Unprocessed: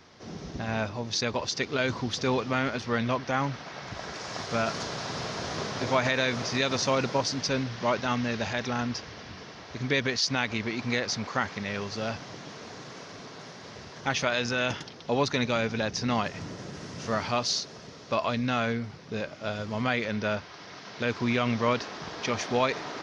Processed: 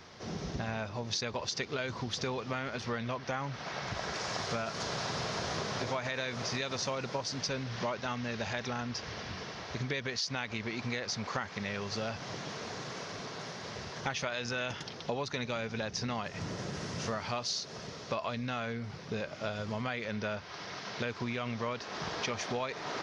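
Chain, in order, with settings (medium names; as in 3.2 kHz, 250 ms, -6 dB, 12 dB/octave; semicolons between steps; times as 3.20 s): compression, threshold -34 dBFS, peak gain reduction 14 dB; peaking EQ 280 Hz -4.5 dB 0.51 oct; trim +2.5 dB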